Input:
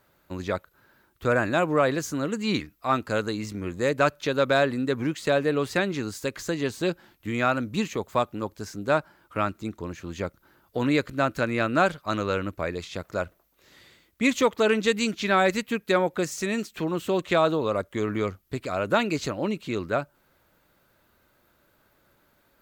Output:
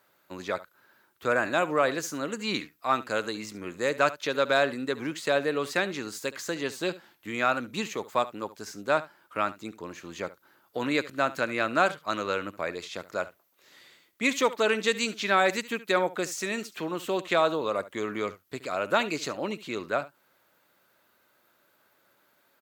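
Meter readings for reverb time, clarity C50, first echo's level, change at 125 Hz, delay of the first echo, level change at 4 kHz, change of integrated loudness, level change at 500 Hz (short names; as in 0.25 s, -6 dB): none, none, -17.0 dB, -10.5 dB, 71 ms, 0.0 dB, -2.5 dB, -3.0 dB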